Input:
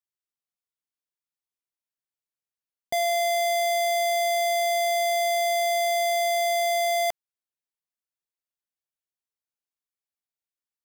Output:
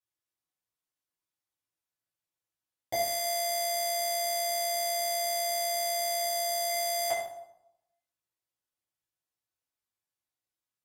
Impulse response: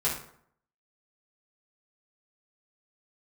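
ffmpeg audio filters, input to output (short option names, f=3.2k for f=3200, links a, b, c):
-filter_complex "[0:a]asettb=1/sr,asplit=3[a][b][c];[a]atrim=end=6.204[d];[b]atrim=start=6.2:end=6.7,asetpts=PTS-STARTPTS,afade=t=in:d=0.004:c=qsin,afade=t=out:st=0.496:d=0.004:c=qsin,bandreject=f=2.3k:w=6.2[e];[c]atrim=start=6.696[f];[d][e]acrossfade=d=0.004:c1=hsin:c2=qsin[g];[g][f]acrossfade=d=0.004:c1=qsin:c2=hsin[h];[1:a]atrim=start_sample=2205,asetrate=32193,aresample=44100[i];[h][i]afir=irnorm=-1:irlink=0,volume=-8dB"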